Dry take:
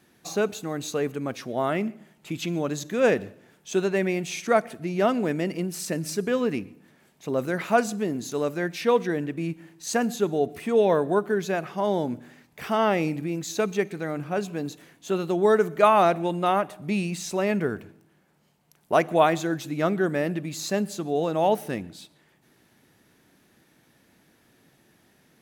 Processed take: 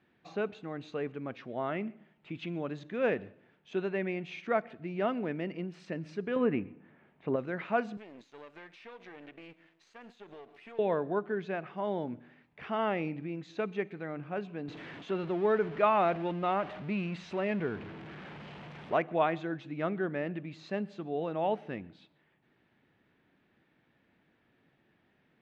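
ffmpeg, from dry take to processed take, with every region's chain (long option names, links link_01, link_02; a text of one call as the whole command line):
ffmpeg -i in.wav -filter_complex "[0:a]asettb=1/sr,asplit=3[link_01][link_02][link_03];[link_01]atrim=end=6.364[link_04];[link_02]atrim=start=6.36:end=7.36,asetpts=PTS-STARTPTS,afade=type=in:duration=0.004:curve=qsin,afade=type=out:start_time=0.996:duration=0.004:curve=qsin,lowpass=2200,acontrast=66[link_05];[link_03]atrim=start=7.356[link_06];[link_04][link_05]acrossfade=duration=0.004:curve1=hsin:curve2=qsin[link_07];[link_07][link_06]acrossfade=duration=0.004:curve1=qsin:curve2=hsin,asettb=1/sr,asplit=3[link_08][link_09][link_10];[link_08]atrim=end=7.974[link_11];[link_09]atrim=start=7.97:end=10.79,asetpts=PTS-STARTPTS,afade=type=in:duration=0.004:curve=qsin,afade=type=out:start_time=2.816:duration=0.004:curve=qsin,aeval=exprs='if(lt(val(0),0),0.251*val(0),val(0))':channel_layout=same,aemphasis=mode=production:type=riaa,acompressor=threshold=-35dB:ratio=12:attack=3.2:release=140:knee=1:detection=peak[link_12];[link_10]atrim=start=10.786[link_13];[link_11][link_12]acrossfade=duration=0.004:curve1=hsin:curve2=qsin[link_14];[link_14][link_13]acrossfade=duration=0.004:curve1=qsin:curve2=hsin,asettb=1/sr,asplit=3[link_15][link_16][link_17];[link_15]atrim=end=14.684[link_18];[link_16]atrim=start=14.68:end=18.97,asetpts=PTS-STARTPTS,afade=type=in:duration=0.004:curve=qsin,afade=type=out:start_time=4.286:duration=0.004:curve=qsin,aeval=exprs='val(0)+0.5*0.0282*sgn(val(0))':channel_layout=same,highpass=56[link_19];[link_17]atrim=start=18.966[link_20];[link_18][link_19]acrossfade=duration=0.004:curve1=hsin:curve2=qsin[link_21];[link_21][link_20]acrossfade=duration=0.004:curve1=qsin:curve2=hsin,lowpass=frequency=2900:width=0.5412,lowpass=frequency=2900:width=1.3066,aemphasis=mode=production:type=50fm,volume=-8.5dB" out.wav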